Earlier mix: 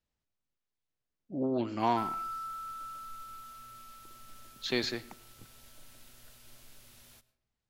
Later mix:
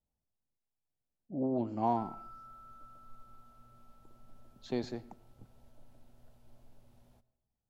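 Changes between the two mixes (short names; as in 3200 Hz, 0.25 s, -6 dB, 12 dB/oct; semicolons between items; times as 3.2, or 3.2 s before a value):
speech: remove air absorption 120 m; master: add EQ curve 240 Hz 0 dB, 340 Hz -4 dB, 810 Hz 0 dB, 1200 Hz -12 dB, 2000 Hz -18 dB, 8100 Hz -22 dB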